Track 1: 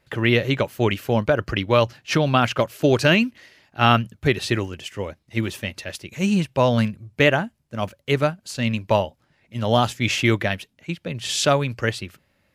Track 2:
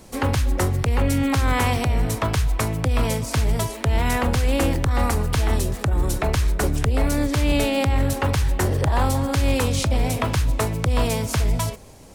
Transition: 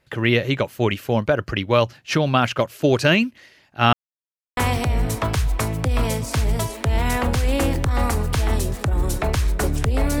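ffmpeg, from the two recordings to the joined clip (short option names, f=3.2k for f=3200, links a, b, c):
-filter_complex "[0:a]apad=whole_dur=10.2,atrim=end=10.2,asplit=2[a][b];[a]atrim=end=3.93,asetpts=PTS-STARTPTS,afade=t=out:st=3.926:d=0.004:c=hsin[c];[b]atrim=start=3.93:end=4.57,asetpts=PTS-STARTPTS,volume=0[d];[1:a]atrim=start=1.57:end=7.2,asetpts=PTS-STARTPTS,afade=t=in:d=0.004:c=hsin[e];[c][d][e]concat=n=3:v=0:a=1"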